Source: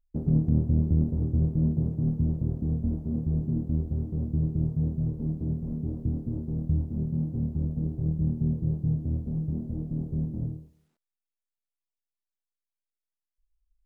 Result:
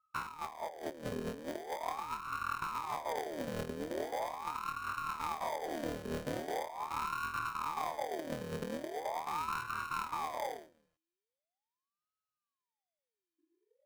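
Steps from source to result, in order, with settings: sorted samples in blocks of 32 samples; compressor with a negative ratio -28 dBFS, ratio -0.5; ring modulator with a swept carrier 800 Hz, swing 60%, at 0.41 Hz; trim -6.5 dB

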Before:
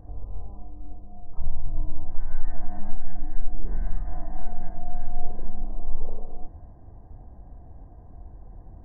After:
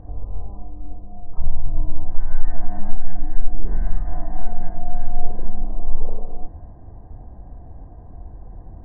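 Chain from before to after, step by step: low-pass 3.2 kHz 12 dB/octave; trim +6 dB

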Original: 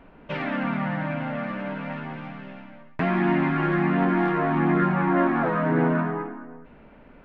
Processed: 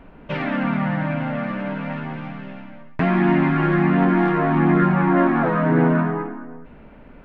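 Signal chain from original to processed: bass shelf 200 Hz +5 dB; trim +3 dB

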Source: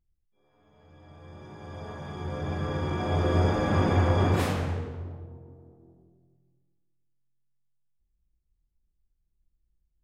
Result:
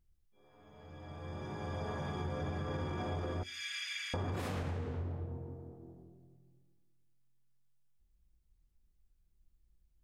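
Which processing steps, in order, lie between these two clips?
3.43–4.14 s: steep high-pass 2.1 kHz 36 dB/octave; peak limiter -23.5 dBFS, peak gain reduction 10.5 dB; compression 6:1, threshold -38 dBFS, peak gain reduction 10 dB; on a send: reverberation RT60 0.45 s, pre-delay 4 ms, DRR 22 dB; on the sum: trim +3 dB

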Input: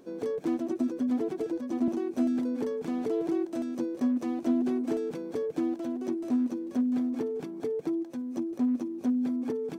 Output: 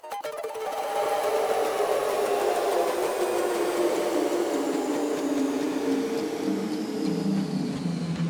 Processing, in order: gliding tape speed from 186% -> 50%; tilt shelf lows -7 dB, about 920 Hz; waveshaping leveller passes 1; harmonic-percussive split percussive +6 dB; on a send: repeats whose band climbs or falls 563 ms, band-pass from 340 Hz, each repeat 0.7 oct, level -2.5 dB; on the sum: swelling reverb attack 990 ms, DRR -7 dB; trim -5 dB

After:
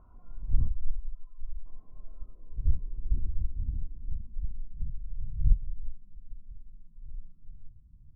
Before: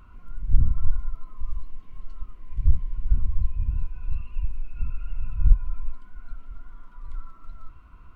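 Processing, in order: 0.67–1.66 s: spectral contrast enhancement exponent 1.5; low-pass sweep 760 Hz -> 150 Hz, 1.70–5.11 s; trim -7 dB

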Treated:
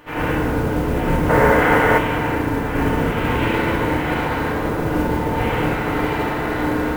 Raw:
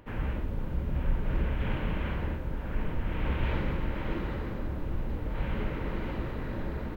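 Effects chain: spectral peaks clipped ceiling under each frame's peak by 21 dB; FDN reverb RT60 1.5 s, low-frequency decay 1.2×, high-frequency decay 0.4×, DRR -6 dB; in parallel at +1 dB: gain riding; on the sum: time-frequency box 1.29–1.98 s, 390–2200 Hz +8 dB; modulation noise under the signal 26 dB; trim -5 dB

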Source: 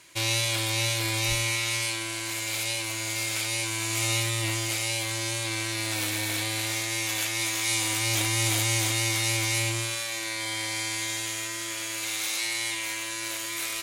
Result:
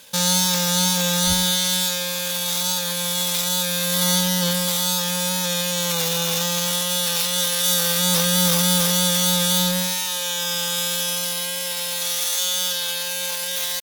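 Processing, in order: pitch shift +8 st; trim +7.5 dB

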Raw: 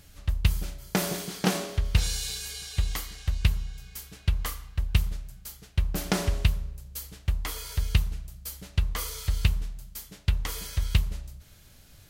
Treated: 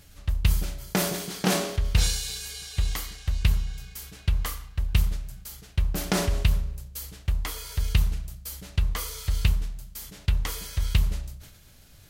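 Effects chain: decay stretcher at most 62 dB/s

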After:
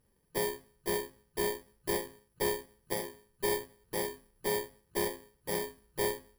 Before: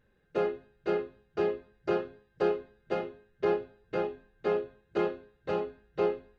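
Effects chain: bit-reversed sample order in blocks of 32 samples; valve stage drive 23 dB, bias 0.5

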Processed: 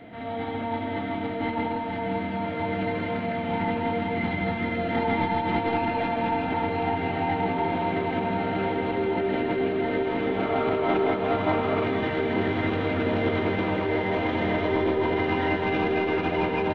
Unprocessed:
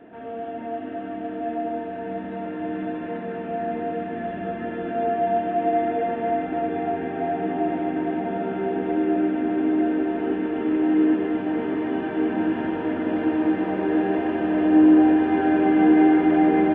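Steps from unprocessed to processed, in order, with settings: tracing distortion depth 0.023 ms; dynamic bell 900 Hz, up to +7 dB, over -46 dBFS, Q 5.6; formant shift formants +3 st; fifteen-band graphic EQ 100 Hz +10 dB, 400 Hz -9 dB, 1 kHz -9 dB; compression 6:1, threshold -27 dBFS, peak gain reduction 10 dB; time-frequency box 10.36–11.84 s, 580–1400 Hz +7 dB; on a send: delay 163 ms -8 dB; on the sum: trim +5.5 dB

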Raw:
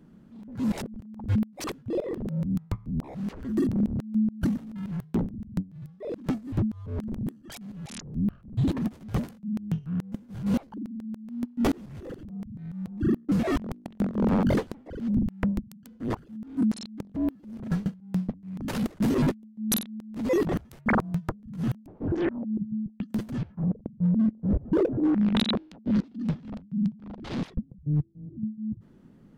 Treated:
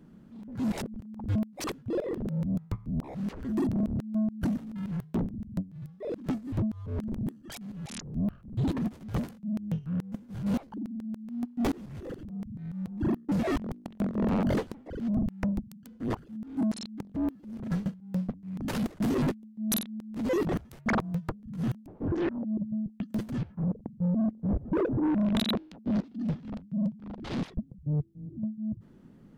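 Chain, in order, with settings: 24.89–25.39 s: bass shelf 150 Hz +6.5 dB; saturation -23 dBFS, distortion -14 dB

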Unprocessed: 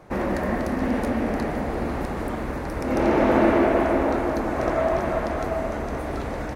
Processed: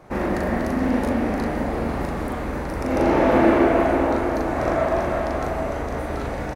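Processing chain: doubling 39 ms -3 dB

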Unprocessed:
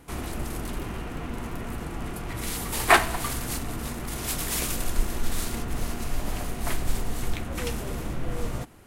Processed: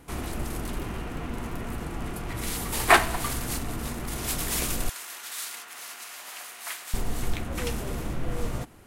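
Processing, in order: 4.89–6.94 s: high-pass 1.3 kHz 12 dB/octave

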